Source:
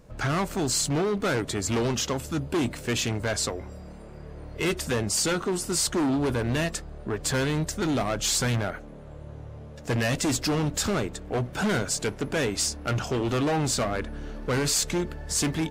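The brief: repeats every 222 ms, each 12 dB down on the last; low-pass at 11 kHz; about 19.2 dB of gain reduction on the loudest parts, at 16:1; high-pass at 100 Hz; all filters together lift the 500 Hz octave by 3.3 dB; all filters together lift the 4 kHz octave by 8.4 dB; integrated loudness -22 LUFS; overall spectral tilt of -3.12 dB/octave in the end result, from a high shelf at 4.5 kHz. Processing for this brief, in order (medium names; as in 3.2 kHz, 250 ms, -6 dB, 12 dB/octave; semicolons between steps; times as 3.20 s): high-pass 100 Hz; low-pass 11 kHz; peaking EQ 500 Hz +4 dB; peaking EQ 4 kHz +6.5 dB; treble shelf 4.5 kHz +7 dB; compression 16:1, threshold -35 dBFS; feedback delay 222 ms, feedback 25%, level -12 dB; trim +16.5 dB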